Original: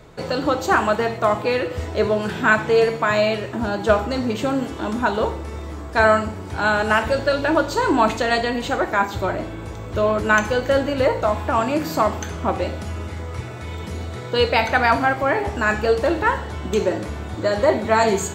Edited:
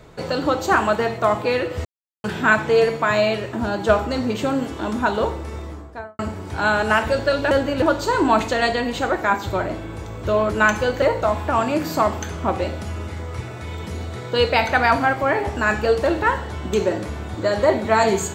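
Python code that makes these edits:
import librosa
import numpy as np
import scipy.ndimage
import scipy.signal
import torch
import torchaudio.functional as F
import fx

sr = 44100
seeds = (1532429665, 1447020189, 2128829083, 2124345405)

y = fx.studio_fade_out(x, sr, start_s=5.54, length_s=0.65)
y = fx.edit(y, sr, fx.silence(start_s=1.85, length_s=0.39),
    fx.move(start_s=10.71, length_s=0.31, to_s=7.51), tone=tone)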